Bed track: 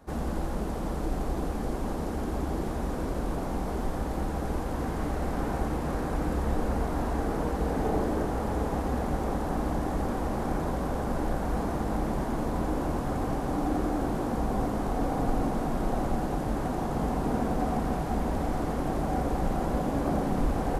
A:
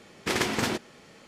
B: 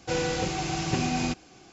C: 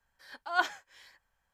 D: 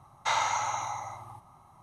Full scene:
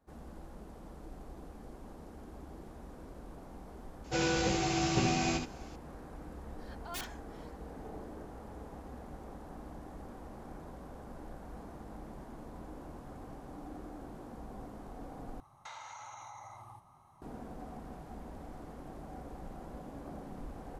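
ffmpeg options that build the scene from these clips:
-filter_complex "[0:a]volume=-18dB[a];[2:a]aecho=1:1:15|78:0.668|0.531[b];[3:a]aeval=exprs='(mod(20*val(0)+1,2)-1)/20':c=same[c];[4:a]acompressor=threshold=-40dB:ratio=6:attack=3.2:release=140:knee=1:detection=peak[d];[a]asplit=2[e][f];[e]atrim=end=15.404[g];[d]atrim=end=1.82,asetpts=PTS-STARTPTS,volume=-5.5dB[h];[f]atrim=start=17.216[i];[b]atrim=end=1.72,asetpts=PTS-STARTPTS,volume=-4.5dB,afade=t=in:d=0.004:c=hsin,afade=t=out:st=1.716:d=0.004:c=hsin,adelay=4040[j];[c]atrim=end=1.53,asetpts=PTS-STARTPTS,volume=-8.5dB,afade=t=in:d=0.004:c=hsin,afade=t=out:st=1.526:d=0.004:c=hsin,adelay=6390[k];[g][h]acrossfade=d=0.004:c1=hsin:c2=hsin[l];[l][i]acrossfade=d=0.004:c1=hsin:c2=hsin[m];[m][j][k]amix=inputs=3:normalize=0"

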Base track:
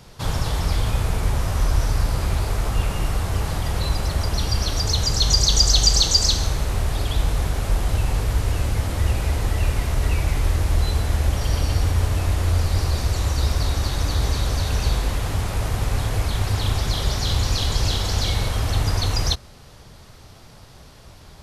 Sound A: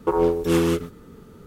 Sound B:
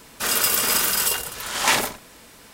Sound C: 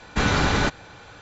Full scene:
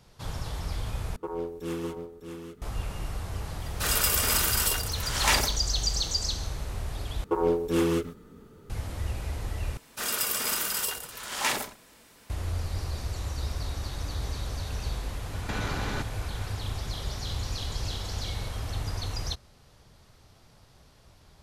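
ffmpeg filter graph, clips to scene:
-filter_complex "[1:a]asplit=2[a][b];[2:a]asplit=2[c][d];[0:a]volume=-11.5dB[e];[a]aecho=1:1:604:0.422[f];[b]flanger=delay=1.8:depth=3.7:regen=-67:speed=1.5:shape=triangular[g];[3:a]acompressor=threshold=-28dB:ratio=6:attack=3.2:release=140:knee=1:detection=peak[h];[e]asplit=4[i][j][k][l];[i]atrim=end=1.164[m];[f]atrim=end=1.46,asetpts=PTS-STARTPTS,volume=-14dB[n];[j]atrim=start=2.616:end=7.244[o];[g]atrim=end=1.46,asetpts=PTS-STARTPTS,volume=-1dB[p];[k]atrim=start=8.696:end=9.774[q];[d]atrim=end=2.53,asetpts=PTS-STARTPTS,volume=-8.5dB[r];[l]atrim=start=12.296[s];[c]atrim=end=2.53,asetpts=PTS-STARTPTS,volume=-5dB,afade=t=in:d=0.004:c=hsin,afade=t=out:st=2.526:d=0.004:c=hsin,adelay=3600[t];[h]atrim=end=1.21,asetpts=PTS-STARTPTS,volume=-1.5dB,afade=t=in:d=0.004:c=hsin,afade=t=out:st=1.206:d=0.004:c=hsin,adelay=15330[u];[m][n]acrossfade=d=0.004:c1=hsin:c2=hsin[v];[v][o]acrossfade=d=0.004:c1=hsin:c2=hsin[w];[w][p]acrossfade=d=0.004:c1=hsin:c2=hsin[x];[x][q]acrossfade=d=0.004:c1=hsin:c2=hsin[y];[y][r]acrossfade=d=0.004:c1=hsin:c2=hsin[z];[z][s]acrossfade=d=0.004:c1=hsin:c2=hsin[aa];[aa][t][u]amix=inputs=3:normalize=0"

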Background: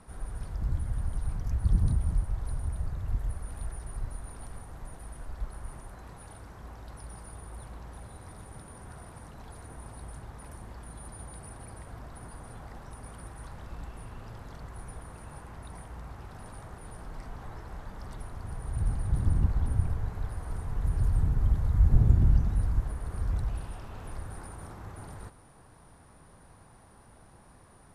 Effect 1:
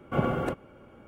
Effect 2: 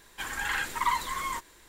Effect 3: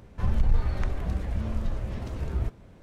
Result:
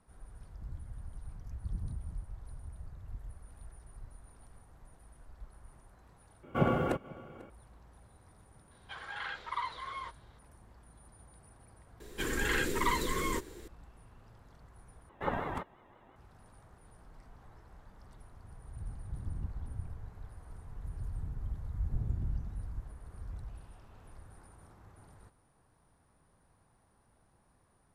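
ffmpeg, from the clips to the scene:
-filter_complex "[1:a]asplit=2[a][b];[2:a]asplit=2[c][d];[0:a]volume=-13.5dB[e];[a]aecho=1:1:494:0.0841[f];[c]highpass=f=440:w=0.5412,highpass=f=440:w=1.3066,equalizer=f=940:t=q:w=4:g=-6,equalizer=f=1.8k:t=q:w=4:g=-8,equalizer=f=2.6k:t=q:w=4:g=-9,lowpass=f=3.8k:w=0.5412,lowpass=f=3.8k:w=1.3066[g];[d]lowshelf=f=580:t=q:w=3:g=10[h];[b]aeval=exprs='val(0)*sin(2*PI*580*n/s+580*0.25/5.7*sin(2*PI*5.7*n/s))':c=same[i];[e]asplit=3[j][k][l];[j]atrim=end=6.434[m];[f]atrim=end=1.07,asetpts=PTS-STARTPTS,volume=-1.5dB[n];[k]atrim=start=7.496:end=15.094[o];[i]atrim=end=1.07,asetpts=PTS-STARTPTS,volume=-5dB[p];[l]atrim=start=16.156[q];[g]atrim=end=1.68,asetpts=PTS-STARTPTS,volume=-4.5dB,afade=t=in:d=0.004:c=hsin,afade=t=out:st=1.676:d=0.004:c=hsin,adelay=8710[r];[h]atrim=end=1.68,asetpts=PTS-STARTPTS,volume=-1dB,afade=t=in:d=0.004:c=hsin,afade=t=out:st=1.676:d=0.004:c=hsin,adelay=12000[s];[m][n]acrossfade=d=0.004:c1=hsin:c2=hsin[t];[t][o]acrossfade=d=0.004:c1=hsin:c2=hsin[u];[u][p]acrossfade=d=0.004:c1=hsin:c2=hsin[v];[v][q]acrossfade=d=0.004:c1=hsin:c2=hsin[w];[w][r][s]amix=inputs=3:normalize=0"

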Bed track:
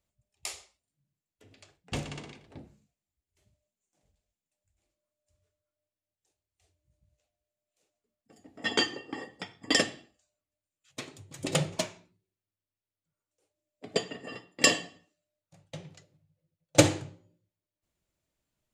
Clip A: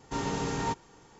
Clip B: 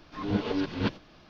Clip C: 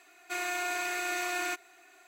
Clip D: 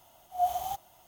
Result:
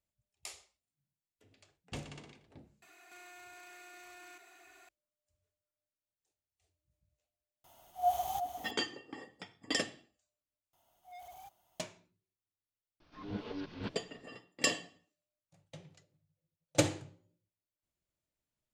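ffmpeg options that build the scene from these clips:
-filter_complex "[4:a]asplit=2[a][b];[0:a]volume=-8.5dB[c];[3:a]acompressor=threshold=-47dB:ratio=16:attack=0.18:release=24:knee=1:detection=peak[d];[a]aecho=1:1:355:0.355[e];[b]asoftclip=type=tanh:threshold=-33.5dB[f];[c]asplit=2[g][h];[g]atrim=end=10.734[i];[f]atrim=end=1.07,asetpts=PTS-STARTPTS,volume=-14.5dB[j];[h]atrim=start=11.796[k];[d]atrim=end=2.07,asetpts=PTS-STARTPTS,volume=-2dB,afade=t=in:d=0.004:c=hsin,afade=t=out:st=2.066:d=0.004:c=hsin,adelay=2820[l];[e]atrim=end=1.07,asetpts=PTS-STARTPTS,volume=-2.5dB,afade=t=in:d=0.004:c=hsin,afade=t=out:st=1.066:d=0.004:c=hsin,adelay=7640[m];[2:a]atrim=end=1.29,asetpts=PTS-STARTPTS,volume=-12.5dB,afade=t=in:d=0.004:c=hsin,afade=t=out:st=1.286:d=0.004:c=hsin,adelay=573300S[n];[i][j]acrossfade=d=0.004:c1=hsin:c2=hsin[o];[o][k]acrossfade=d=0.004:c1=hsin:c2=hsin[p];[p][l][m][n]amix=inputs=4:normalize=0"

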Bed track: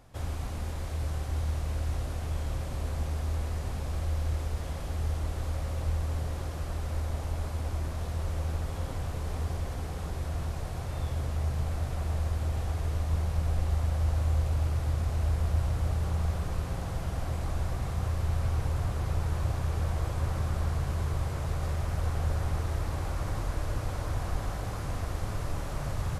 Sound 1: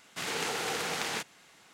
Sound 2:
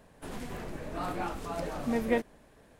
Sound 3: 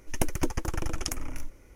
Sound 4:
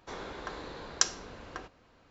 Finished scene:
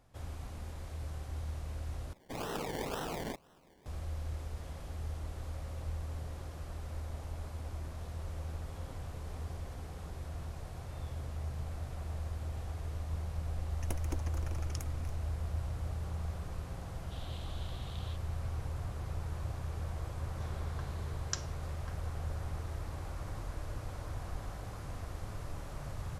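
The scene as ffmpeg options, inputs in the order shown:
-filter_complex "[1:a]asplit=2[a][b];[0:a]volume=-9dB[c];[a]acrusher=samples=27:mix=1:aa=0.000001:lfo=1:lforange=16.2:lforate=2[d];[b]asuperpass=centerf=3500:order=4:qfactor=3.1[e];[c]asplit=2[f][g];[f]atrim=end=2.134[h];[d]atrim=end=1.73,asetpts=PTS-STARTPTS,volume=-4.5dB[i];[g]atrim=start=3.856[j];[3:a]atrim=end=1.75,asetpts=PTS-STARTPTS,volume=-13.5dB,afade=t=in:d=0.004:c=hsin,afade=t=out:st=1.746:d=0.004:c=hsin,adelay=13690[k];[e]atrim=end=1.73,asetpts=PTS-STARTPTS,volume=-12dB,afade=t=in:d=0.004:c=hsin,afade=t=out:st=1.726:d=0.004:c=hsin,adelay=16940[l];[4:a]atrim=end=2.1,asetpts=PTS-STARTPTS,volume=-11.5dB,afade=t=in:d=0.004:c=hsin,afade=t=out:st=2.096:d=0.004:c=hsin,adelay=20320[m];[h][i]acrossfade=d=0.004:c1=hsin:c2=hsin[n];[n][j]acrossfade=d=0.004:c1=hsin:c2=hsin[o];[o][k][l][m]amix=inputs=4:normalize=0"

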